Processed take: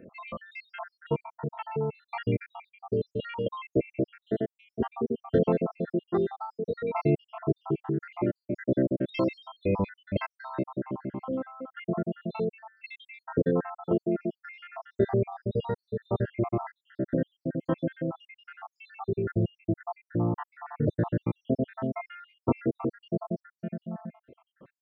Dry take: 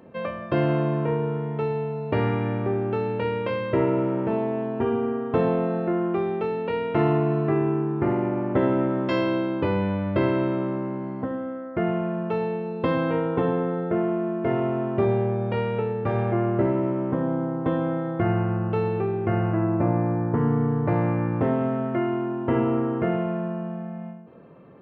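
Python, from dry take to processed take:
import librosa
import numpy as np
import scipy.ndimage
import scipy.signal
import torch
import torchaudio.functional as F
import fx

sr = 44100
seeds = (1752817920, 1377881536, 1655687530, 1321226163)

y = fx.spec_dropout(x, sr, seeds[0], share_pct=79)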